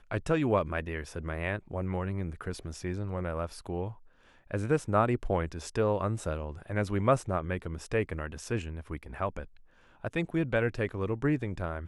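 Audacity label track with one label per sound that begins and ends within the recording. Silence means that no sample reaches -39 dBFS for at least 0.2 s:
4.510000	9.440000	sound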